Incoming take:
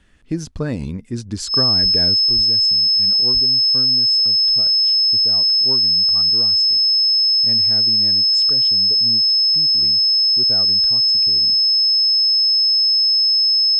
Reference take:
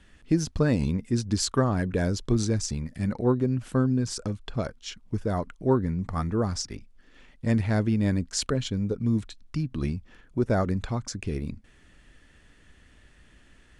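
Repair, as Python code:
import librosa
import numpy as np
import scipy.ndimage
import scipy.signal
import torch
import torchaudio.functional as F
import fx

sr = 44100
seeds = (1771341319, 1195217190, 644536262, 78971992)

y = fx.notch(x, sr, hz=5200.0, q=30.0)
y = fx.fix_deplosive(y, sr, at_s=(1.82, 2.35, 3.33))
y = fx.fix_level(y, sr, at_s=2.14, step_db=8.0)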